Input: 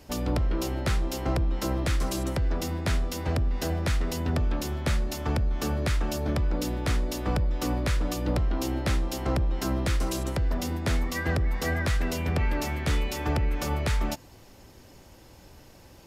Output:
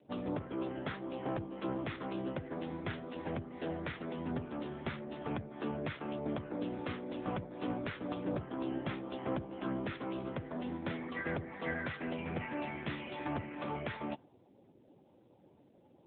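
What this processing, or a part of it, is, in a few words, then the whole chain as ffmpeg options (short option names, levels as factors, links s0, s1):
mobile call with aggressive noise cancelling: -filter_complex "[0:a]asettb=1/sr,asplit=3[s0][s1][s2];[s0]atrim=end=11.754[s3];[s1]atrim=start=11.75:end=13.7,asetpts=PTS-STARTPTS,afade=t=in:d=0.004:c=qsin,afade=t=out:st=1.946:d=0.004:c=qsin,bandreject=f=440:w=12[s4];[s2]atrim=start=13.696[s5];[s3][s4]acrossfade=d=0.004:c1=hsin:c2=qsin[s6];[s6][s5]acrossfade=d=0.004:c1=qsin:c2=hsin,highpass=160,afftdn=nr=29:nf=-51,volume=0.531" -ar 8000 -c:a libopencore_amrnb -b:a 7950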